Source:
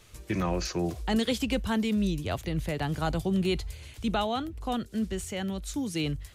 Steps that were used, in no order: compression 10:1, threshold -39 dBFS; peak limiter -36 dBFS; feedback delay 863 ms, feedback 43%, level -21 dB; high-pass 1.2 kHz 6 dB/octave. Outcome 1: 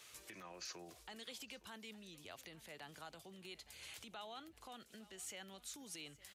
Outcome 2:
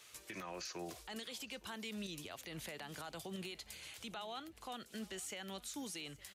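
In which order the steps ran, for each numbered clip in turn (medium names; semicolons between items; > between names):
compression > feedback delay > peak limiter > high-pass; high-pass > compression > peak limiter > feedback delay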